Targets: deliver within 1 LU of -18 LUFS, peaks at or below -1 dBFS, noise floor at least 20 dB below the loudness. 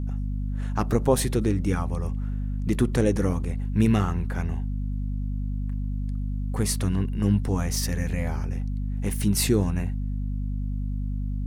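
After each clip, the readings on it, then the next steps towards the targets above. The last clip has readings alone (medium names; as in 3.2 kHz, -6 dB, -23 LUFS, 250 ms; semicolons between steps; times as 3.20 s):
hum 50 Hz; highest harmonic 250 Hz; hum level -25 dBFS; loudness -27.0 LUFS; peak level -7.5 dBFS; loudness target -18.0 LUFS
-> de-hum 50 Hz, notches 5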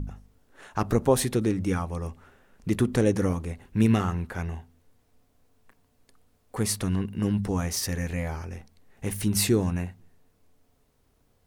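hum not found; loudness -27.0 LUFS; peak level -8.5 dBFS; loudness target -18.0 LUFS
-> trim +9 dB; peak limiter -1 dBFS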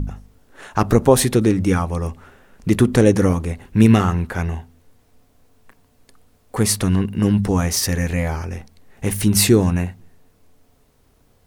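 loudness -18.0 LUFS; peak level -1.0 dBFS; noise floor -58 dBFS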